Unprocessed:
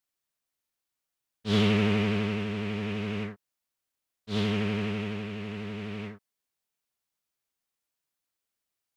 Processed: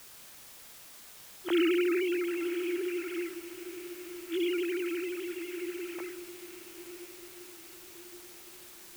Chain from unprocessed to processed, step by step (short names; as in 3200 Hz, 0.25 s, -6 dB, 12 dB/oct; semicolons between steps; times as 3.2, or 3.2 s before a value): sine-wave speech; requantised 8-bit, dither triangular; diffused feedback echo 0.998 s, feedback 55%, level -13 dB; gain -3 dB